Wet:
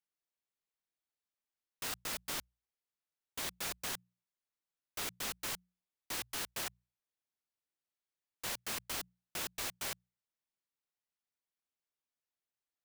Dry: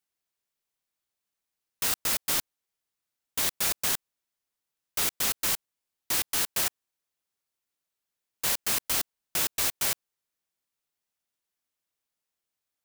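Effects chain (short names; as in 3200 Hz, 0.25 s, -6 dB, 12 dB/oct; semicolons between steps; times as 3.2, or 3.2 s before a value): high shelf 5900 Hz -7.5 dB; notches 60/120/180 Hz; gain -8 dB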